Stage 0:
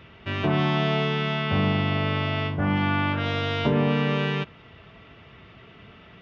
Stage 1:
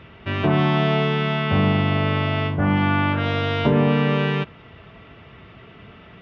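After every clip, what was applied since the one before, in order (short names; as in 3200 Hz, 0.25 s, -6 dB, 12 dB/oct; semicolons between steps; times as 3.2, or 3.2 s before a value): high shelf 4600 Hz -10 dB; gain +4.5 dB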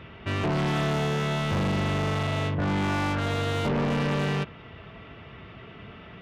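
soft clip -23 dBFS, distortion -8 dB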